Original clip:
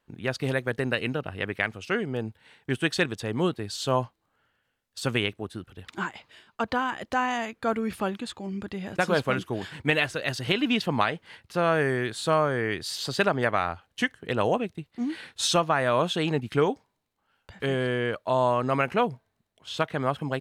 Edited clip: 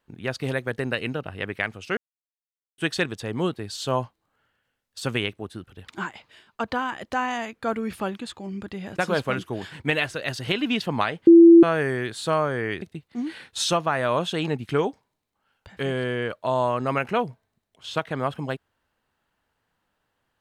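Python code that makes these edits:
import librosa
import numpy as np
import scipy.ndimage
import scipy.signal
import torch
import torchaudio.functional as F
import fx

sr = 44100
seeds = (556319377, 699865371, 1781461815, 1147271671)

y = fx.edit(x, sr, fx.silence(start_s=1.97, length_s=0.81),
    fx.bleep(start_s=11.27, length_s=0.36, hz=336.0, db=-6.5),
    fx.cut(start_s=12.82, length_s=1.83), tone=tone)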